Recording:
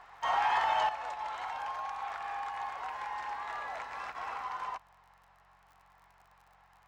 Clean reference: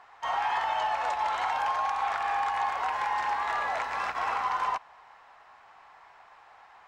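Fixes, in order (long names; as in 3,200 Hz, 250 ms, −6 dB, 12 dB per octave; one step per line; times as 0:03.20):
click removal
hum removal 45.6 Hz, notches 4
level 0 dB, from 0:00.89 +9.5 dB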